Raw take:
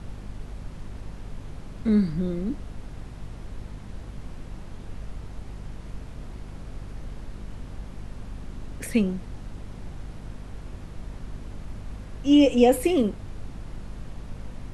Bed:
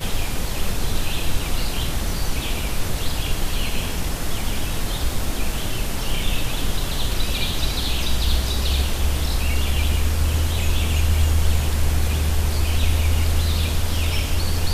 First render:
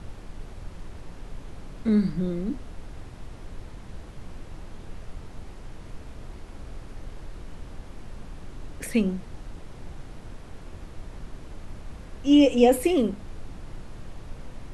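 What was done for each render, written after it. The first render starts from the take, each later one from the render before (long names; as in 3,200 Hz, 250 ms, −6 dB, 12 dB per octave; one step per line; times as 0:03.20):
mains-hum notches 50/100/150/200/250 Hz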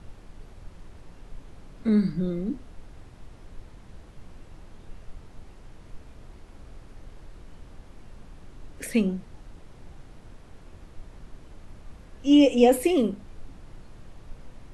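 noise reduction from a noise print 6 dB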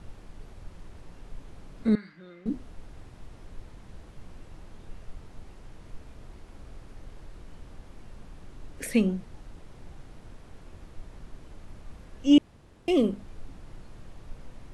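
0:01.95–0:02.46: resonant band-pass 1,900 Hz, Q 1.5
0:12.38–0:12.88: fill with room tone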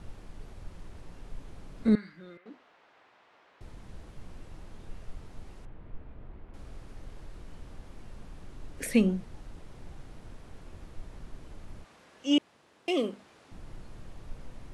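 0:02.37–0:03.61: band-pass filter 780–3,000 Hz
0:05.65–0:06.54: high-frequency loss of the air 490 metres
0:11.84–0:13.52: meter weighting curve A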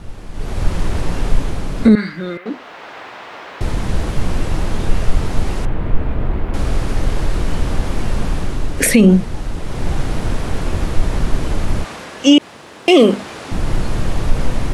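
automatic gain control gain up to 16 dB
boost into a limiter +12 dB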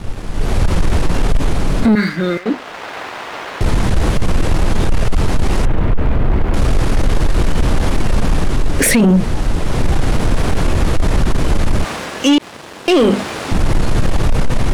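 leveller curve on the samples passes 2
brickwall limiter −6 dBFS, peak gain reduction 5 dB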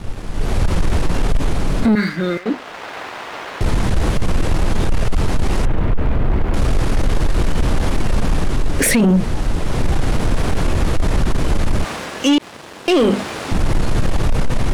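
level −2.5 dB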